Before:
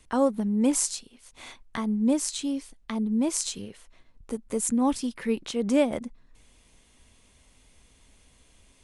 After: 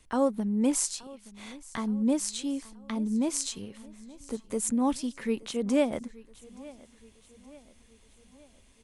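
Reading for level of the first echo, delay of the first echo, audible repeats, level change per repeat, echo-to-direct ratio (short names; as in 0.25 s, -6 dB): -21.0 dB, 0.874 s, 3, -6.0 dB, -19.5 dB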